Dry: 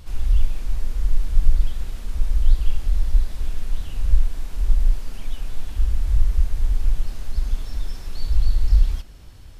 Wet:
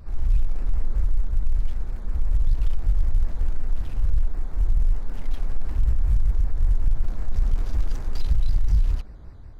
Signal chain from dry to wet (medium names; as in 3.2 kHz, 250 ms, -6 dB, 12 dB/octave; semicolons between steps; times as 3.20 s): local Wiener filter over 15 samples; level rider gain up to 6 dB; peak limiter -9 dBFS, peak gain reduction 7.5 dB; saturation -11 dBFS, distortion -19 dB; vibrato with a chosen wave square 5.3 Hz, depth 160 cents